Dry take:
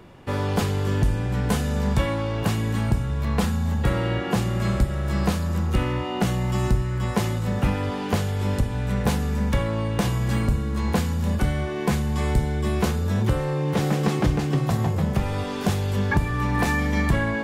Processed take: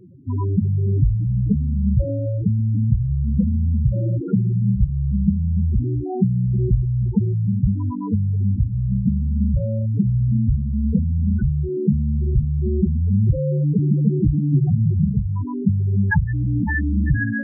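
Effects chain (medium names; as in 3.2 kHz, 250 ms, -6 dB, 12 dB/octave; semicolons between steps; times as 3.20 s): comb of notches 620 Hz; loudest bins only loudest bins 4; trim +7.5 dB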